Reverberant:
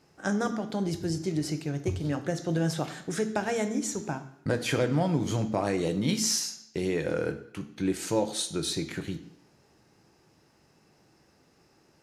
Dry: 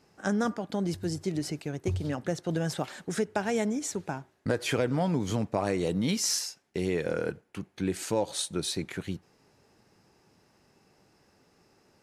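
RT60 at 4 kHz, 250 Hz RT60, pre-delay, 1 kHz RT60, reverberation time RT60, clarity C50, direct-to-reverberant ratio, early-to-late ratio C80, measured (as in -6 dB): 0.70 s, 0.75 s, 3 ms, 0.70 s, 0.70 s, 12.5 dB, 8.0 dB, 15.0 dB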